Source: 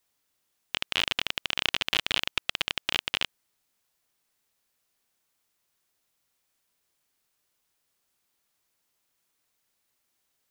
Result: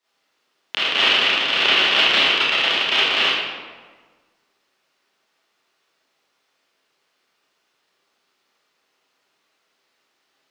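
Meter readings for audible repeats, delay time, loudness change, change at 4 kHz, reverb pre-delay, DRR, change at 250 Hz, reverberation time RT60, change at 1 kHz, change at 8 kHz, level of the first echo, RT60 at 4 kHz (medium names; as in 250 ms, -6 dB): no echo, no echo, +12.5 dB, +12.0 dB, 26 ms, -11.5 dB, +11.0 dB, 1.5 s, +14.0 dB, +3.0 dB, no echo, 0.90 s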